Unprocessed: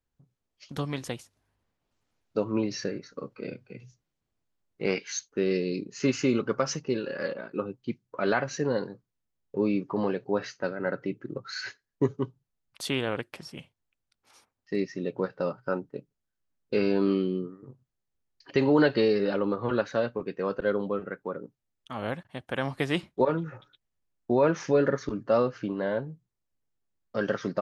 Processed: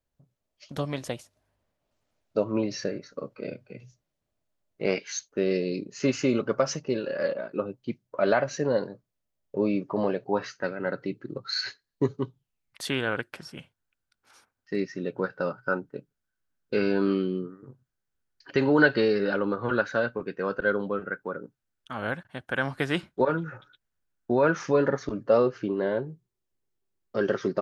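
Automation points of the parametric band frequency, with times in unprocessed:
parametric band +10.5 dB 0.29 octaves
0:10.22 610 Hz
0:10.95 4,200 Hz
0:12.20 4,200 Hz
0:12.97 1,500 Hz
0:24.51 1,500 Hz
0:25.47 380 Hz

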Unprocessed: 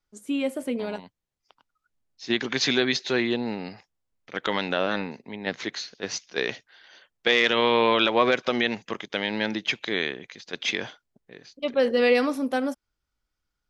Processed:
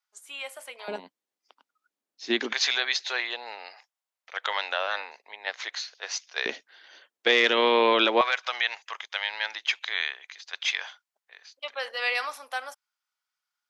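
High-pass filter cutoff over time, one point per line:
high-pass filter 24 dB per octave
810 Hz
from 0:00.88 250 Hz
from 0:02.53 670 Hz
from 0:06.46 260 Hz
from 0:08.21 820 Hz

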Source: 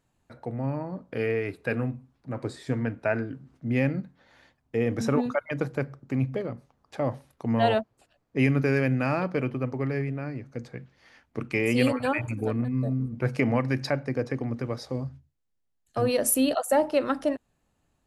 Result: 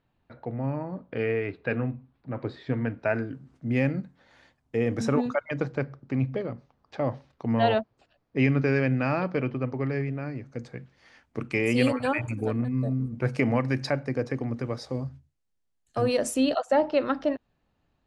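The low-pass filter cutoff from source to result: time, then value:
low-pass filter 24 dB per octave
0:02.83 4,000 Hz
0:03.27 10,000 Hz
0:05.00 10,000 Hz
0:05.84 5,500 Hz
0:09.77 5,500 Hz
0:10.79 10,000 Hz
0:16.06 10,000 Hz
0:16.78 4,900 Hz

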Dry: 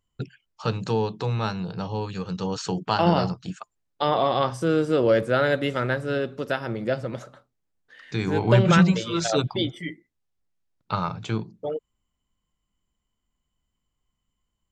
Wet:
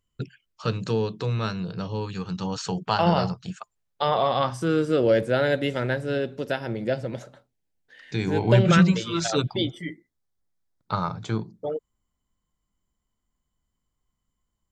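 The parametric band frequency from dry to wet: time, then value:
parametric band −11 dB 0.34 octaves
0:01.87 830 Hz
0:02.77 300 Hz
0:04.25 300 Hz
0:05.14 1,200 Hz
0:08.55 1,200 Hz
0:09.23 450 Hz
0:09.84 2,700 Hz

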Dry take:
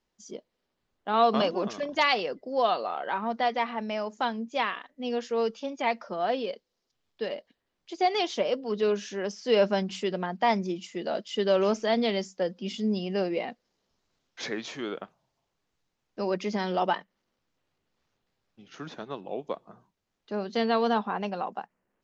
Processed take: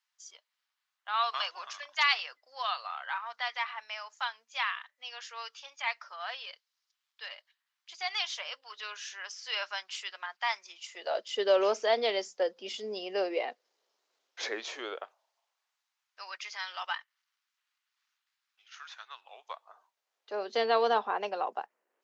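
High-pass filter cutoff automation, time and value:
high-pass filter 24 dB per octave
0:10.70 1,100 Hz
0:11.28 410 Hz
0:14.72 410 Hz
0:16.29 1,200 Hz
0:19.15 1,200 Hz
0:20.53 370 Hz

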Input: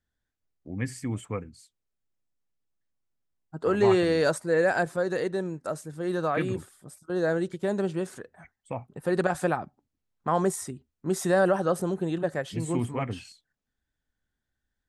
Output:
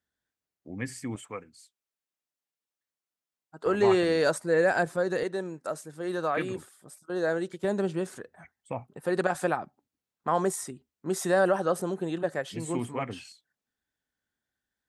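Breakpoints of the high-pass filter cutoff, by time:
high-pass filter 6 dB per octave
230 Hz
from 0:01.16 720 Hz
from 0:03.66 210 Hz
from 0:04.35 94 Hz
from 0:05.23 340 Hz
from 0:07.64 100 Hz
from 0:08.88 260 Hz

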